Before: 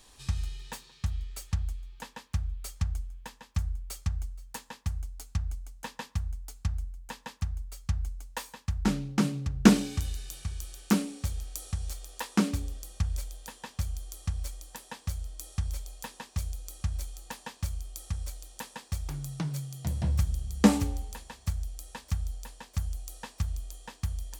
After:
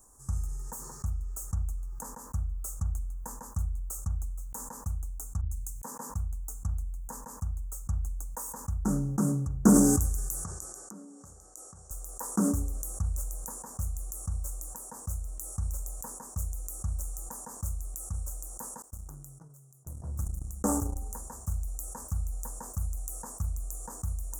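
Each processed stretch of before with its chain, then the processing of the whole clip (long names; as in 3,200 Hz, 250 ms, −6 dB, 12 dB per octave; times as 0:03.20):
0:05.41–0:06.10: high-pass filter 91 Hz + multiband upward and downward expander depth 100%
0:10.44–0:11.91: band-pass filter 150–5,700 Hz + bass and treble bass −3 dB, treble +2 dB + downward compressor 10 to 1, threshold −42 dBFS
0:18.82–0:20.96: noise gate −31 dBFS, range −13 dB + parametric band 200 Hz −8 dB 0.6 octaves + power curve on the samples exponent 1.4
whole clip: elliptic band-stop filter 1,300–6,800 Hz, stop band 80 dB; high-shelf EQ 4,400 Hz +7 dB; level that may fall only so fast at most 27 dB per second; level −3.5 dB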